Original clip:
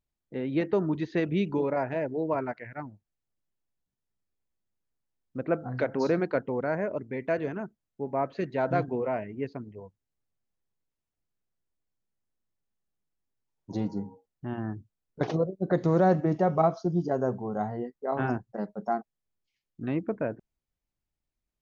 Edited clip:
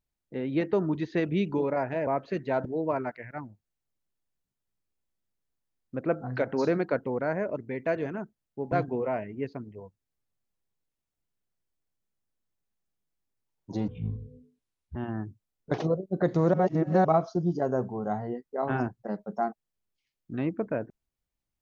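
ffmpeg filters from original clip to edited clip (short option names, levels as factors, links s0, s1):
-filter_complex "[0:a]asplit=8[s0][s1][s2][s3][s4][s5][s6][s7];[s0]atrim=end=2.072[s8];[s1]atrim=start=8.138:end=8.722[s9];[s2]atrim=start=2.068:end=8.142[s10];[s3]atrim=start=8.718:end=13.884[s11];[s4]atrim=start=13.88:end=14.45,asetpts=PTS-STARTPTS,asetrate=23373,aresample=44100,atrim=end_sample=47428,asetpts=PTS-STARTPTS[s12];[s5]atrim=start=14.446:end=16.032[s13];[s6]atrim=start=16.028:end=16.542,asetpts=PTS-STARTPTS,areverse[s14];[s7]atrim=start=16.538[s15];[s8][s9]acrossfade=d=0.004:c1=hsin:c2=hsin[s16];[s16][s10]acrossfade=d=0.004:c1=hsin:c2=hsin[s17];[s17][s11]acrossfade=d=0.004:c1=hsin:c2=hsin[s18];[s18][s12]acrossfade=d=0.004:c1=hsin:c2=hsin[s19];[s19][s13]acrossfade=d=0.004:c1=hsin:c2=hsin[s20];[s20][s14]acrossfade=d=0.004:c1=hsin:c2=hsin[s21];[s21][s15]acrossfade=d=0.004:c1=hsin:c2=hsin"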